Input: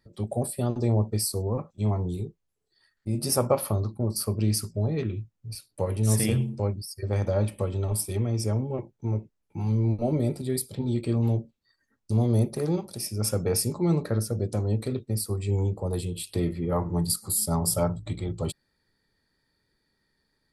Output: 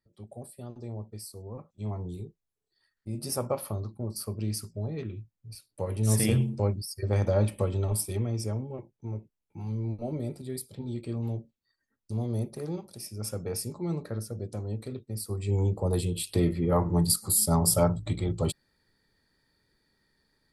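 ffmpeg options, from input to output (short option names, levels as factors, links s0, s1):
-af "volume=3.35,afade=t=in:st=1.38:d=0.7:silence=0.398107,afade=t=in:st=5.68:d=0.68:silence=0.421697,afade=t=out:st=7.65:d=1.11:silence=0.375837,afade=t=in:st=15.12:d=0.75:silence=0.316228"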